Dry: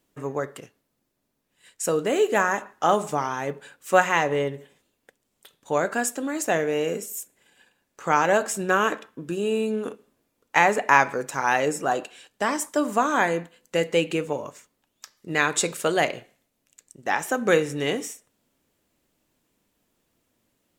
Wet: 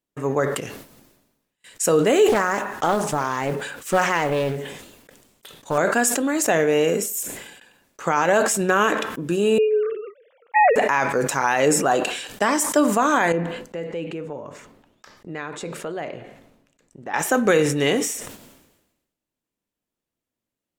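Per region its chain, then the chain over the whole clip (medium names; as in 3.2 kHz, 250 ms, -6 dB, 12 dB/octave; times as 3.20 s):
2.28–5.78 s: compression 2:1, threshold -26 dBFS + modulation noise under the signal 27 dB + loudspeaker Doppler distortion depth 0.43 ms
9.58–10.76 s: formants replaced by sine waves + distance through air 190 m
13.32–17.14 s: low-pass 1.2 kHz 6 dB/octave + compression 2:1, threshold -43 dBFS
whole clip: gate with hold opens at -46 dBFS; peak limiter -14 dBFS; decay stretcher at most 55 dB/s; trim +6 dB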